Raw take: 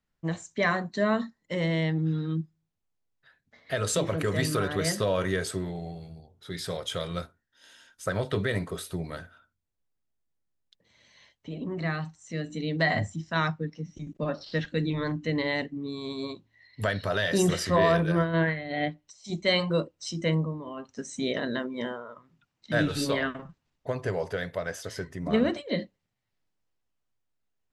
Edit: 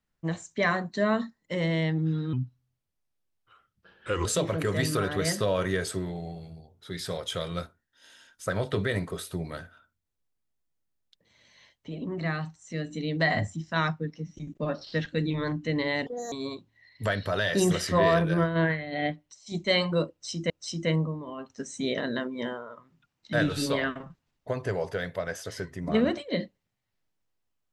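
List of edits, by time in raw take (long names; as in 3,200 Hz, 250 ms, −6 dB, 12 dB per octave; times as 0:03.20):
0:02.33–0:03.85: play speed 79%
0:15.66–0:16.10: play speed 172%
0:19.89–0:20.28: repeat, 2 plays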